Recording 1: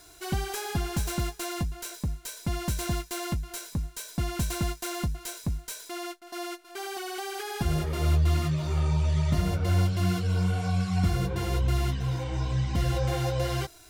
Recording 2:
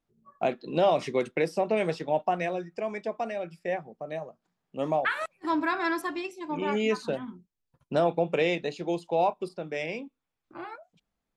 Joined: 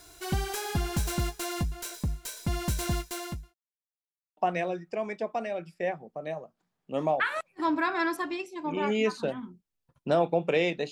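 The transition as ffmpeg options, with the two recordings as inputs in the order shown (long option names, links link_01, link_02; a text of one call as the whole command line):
ffmpeg -i cue0.wav -i cue1.wav -filter_complex "[0:a]apad=whole_dur=10.91,atrim=end=10.91,asplit=2[link_01][link_02];[link_01]atrim=end=3.54,asetpts=PTS-STARTPTS,afade=type=out:start_time=2.85:duration=0.69:curve=qsin[link_03];[link_02]atrim=start=3.54:end=4.37,asetpts=PTS-STARTPTS,volume=0[link_04];[1:a]atrim=start=2.22:end=8.76,asetpts=PTS-STARTPTS,afade=type=in:duration=0.004:curve=hsin[link_05];[link_03][link_04][link_05]concat=n=3:v=0:a=1" out.wav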